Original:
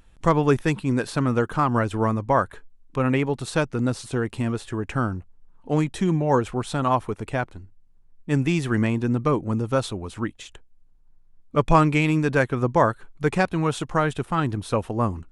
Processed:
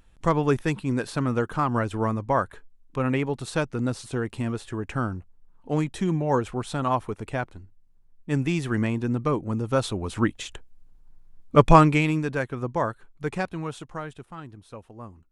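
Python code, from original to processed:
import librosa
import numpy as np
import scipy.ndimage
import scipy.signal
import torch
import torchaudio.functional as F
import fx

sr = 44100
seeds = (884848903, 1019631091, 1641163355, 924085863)

y = fx.gain(x, sr, db=fx.line((9.58, -3.0), (10.23, 5.0), (11.62, 5.0), (12.36, -7.0), (13.45, -7.0), (14.51, -18.0)))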